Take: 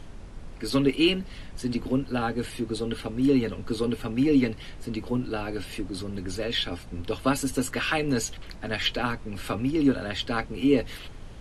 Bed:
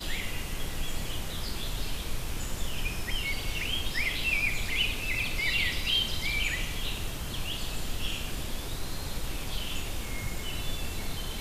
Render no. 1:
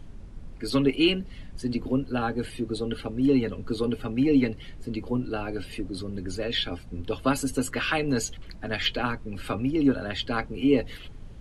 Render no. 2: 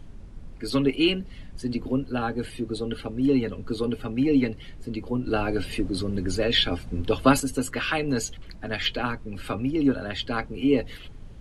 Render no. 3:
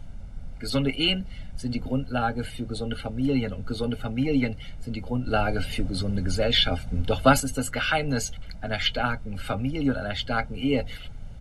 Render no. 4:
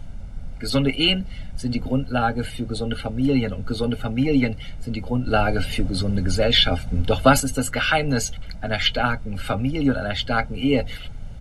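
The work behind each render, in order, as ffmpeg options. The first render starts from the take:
ffmpeg -i in.wav -af "afftdn=noise_reduction=8:noise_floor=-42" out.wav
ffmpeg -i in.wav -filter_complex "[0:a]asplit=3[link_01][link_02][link_03];[link_01]atrim=end=5.272[link_04];[link_02]atrim=start=5.268:end=7.402,asetpts=PTS-STARTPTS,volume=6dB[link_05];[link_03]atrim=start=7.398[link_06];[link_04][link_05]acrossfade=duration=0.004:curve1=hsin:curve2=hsin[link_07];[link_07][link_06]acrossfade=duration=0.004:curve1=hsin:curve2=hsin" out.wav
ffmpeg -i in.wav -af "aecho=1:1:1.4:0.67" out.wav
ffmpeg -i in.wav -af "volume=4.5dB,alimiter=limit=-2dB:level=0:latency=1" out.wav

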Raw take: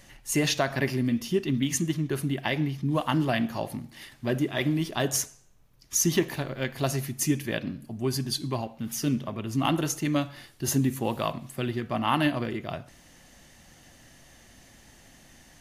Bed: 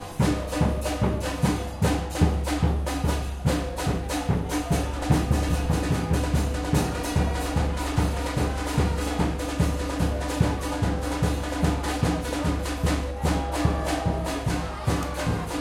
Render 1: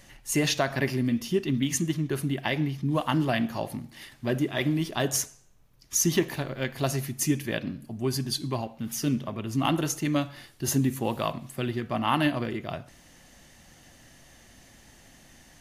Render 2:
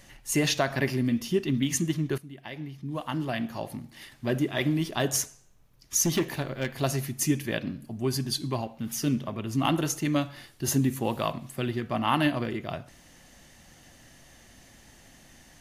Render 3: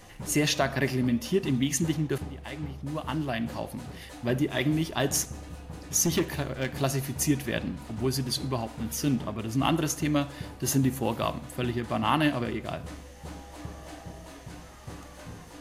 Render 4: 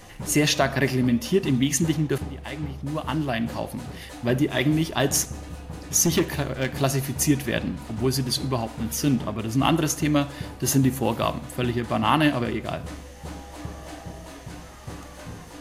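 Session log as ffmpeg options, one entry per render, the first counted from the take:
ffmpeg -i in.wav -af anull out.wav
ffmpeg -i in.wav -filter_complex "[0:a]asettb=1/sr,asplit=3[link_01][link_02][link_03];[link_01]atrim=end=6.054[link_04];[link_02]atrim=start=6.05:end=6.79,asetpts=PTS-STARTPTS,afade=type=in:duration=0.004:curve=qsin,afade=type=out:start_time=0.736:duration=0.004:curve=qsin,volume=20dB,asoftclip=hard,volume=-20dB[link_05];[link_03]atrim=start=6.786[link_06];[link_04][link_05]acrossfade=duration=0.004:curve1=hsin:curve2=qsin[link_07];[link_07][link_06]acrossfade=duration=0.004:curve1=qsin:curve2=hsin,asplit=2[link_08][link_09];[link_08]atrim=end=2.18,asetpts=PTS-STARTPTS,afade=type=out:start_time=2.176:duration=0.004:curve=hsin:silence=0.11885[link_10];[link_09]atrim=start=2.18,asetpts=PTS-STARTPTS,afade=type=in:duration=2.18:silence=0.11885[link_11];[link_10][link_11]concat=n=2:v=0:a=1" out.wav
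ffmpeg -i in.wav -i bed.wav -filter_complex "[1:a]volume=-17.5dB[link_01];[0:a][link_01]amix=inputs=2:normalize=0" out.wav
ffmpeg -i in.wav -af "volume=4.5dB" out.wav

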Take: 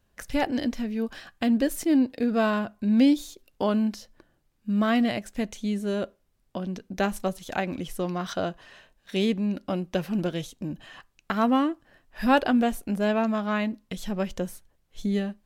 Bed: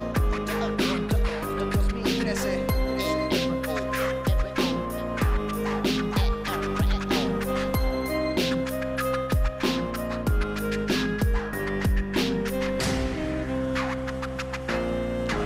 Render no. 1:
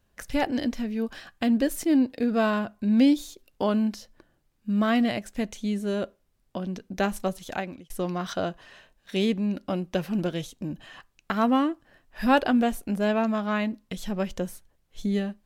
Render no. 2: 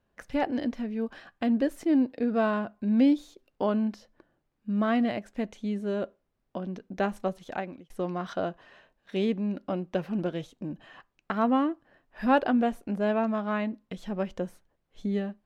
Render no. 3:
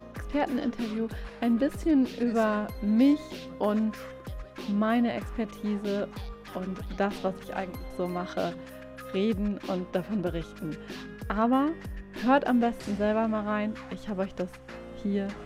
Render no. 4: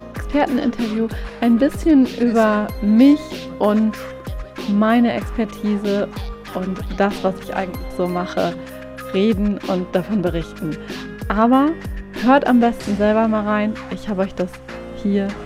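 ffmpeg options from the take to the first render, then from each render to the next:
ffmpeg -i in.wav -filter_complex "[0:a]asplit=2[link_01][link_02];[link_01]atrim=end=7.9,asetpts=PTS-STARTPTS,afade=type=out:start_time=7.47:duration=0.43[link_03];[link_02]atrim=start=7.9,asetpts=PTS-STARTPTS,afade=type=in:duration=0.004:curve=hsin[link_04];[link_03][link_04]concat=n=2:v=0:a=1" out.wav
ffmpeg -i in.wav -af "lowpass=frequency=1400:poles=1,lowshelf=frequency=130:gain=-10.5" out.wav
ffmpeg -i in.wav -i bed.wav -filter_complex "[1:a]volume=-15.5dB[link_01];[0:a][link_01]amix=inputs=2:normalize=0" out.wav
ffmpeg -i in.wav -af "volume=10.5dB,alimiter=limit=-3dB:level=0:latency=1" out.wav

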